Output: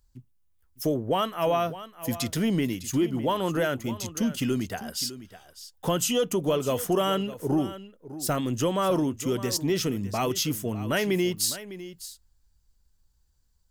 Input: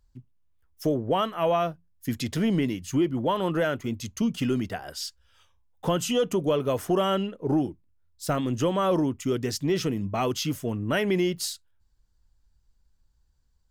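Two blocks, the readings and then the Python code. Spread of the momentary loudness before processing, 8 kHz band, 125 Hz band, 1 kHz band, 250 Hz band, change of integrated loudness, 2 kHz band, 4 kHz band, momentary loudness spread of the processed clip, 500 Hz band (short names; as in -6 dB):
9 LU, +5.5 dB, -1.0 dB, -0.5 dB, -1.0 dB, 0.0 dB, 0.0 dB, +2.0 dB, 10 LU, -1.0 dB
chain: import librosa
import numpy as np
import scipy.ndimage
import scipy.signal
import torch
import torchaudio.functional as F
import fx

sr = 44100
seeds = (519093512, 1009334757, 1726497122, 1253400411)

p1 = fx.high_shelf(x, sr, hz=6000.0, db=11.0)
p2 = p1 + fx.echo_single(p1, sr, ms=605, db=-14.5, dry=0)
y = p2 * 10.0 ** (-1.0 / 20.0)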